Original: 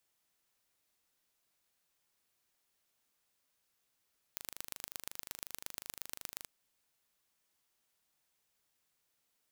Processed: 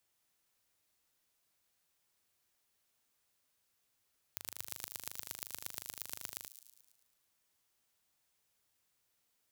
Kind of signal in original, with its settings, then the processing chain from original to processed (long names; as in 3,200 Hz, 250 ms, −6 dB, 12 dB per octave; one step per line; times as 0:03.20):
impulse train 25.5 per second, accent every 3, −12 dBFS 2.09 s
parametric band 96 Hz +7 dB 0.32 octaves
on a send: delay with a high-pass on its return 109 ms, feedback 56%, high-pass 5,100 Hz, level −7 dB